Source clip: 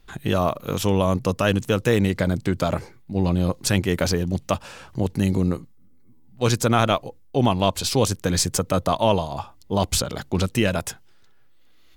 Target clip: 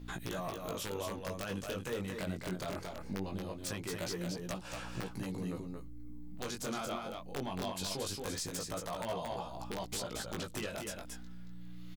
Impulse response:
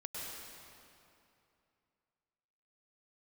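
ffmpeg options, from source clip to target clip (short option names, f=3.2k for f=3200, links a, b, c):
-filter_complex "[0:a]aeval=exprs='val(0)+0.00891*(sin(2*PI*60*n/s)+sin(2*PI*2*60*n/s)/2+sin(2*PI*3*60*n/s)/3+sin(2*PI*4*60*n/s)/4+sin(2*PI*5*60*n/s)/5)':c=same,equalizer=f=77:t=o:w=2.4:g=-8.5,asplit=2[a][b];[b]aeval=exprs='0.562*sin(PI/2*2*val(0)/0.562)':c=same,volume=-5.5dB[c];[a][c]amix=inputs=2:normalize=0,acompressor=threshold=-29dB:ratio=2.5,aeval=exprs='(mod(5.96*val(0)+1,2)-1)/5.96':c=same,alimiter=limit=-20.5dB:level=0:latency=1:release=41,asplit=2[d][e];[e]aecho=0:1:227:0.596[f];[d][f]amix=inputs=2:normalize=0,flanger=delay=16.5:depth=5.7:speed=0.21,volume=-6.5dB"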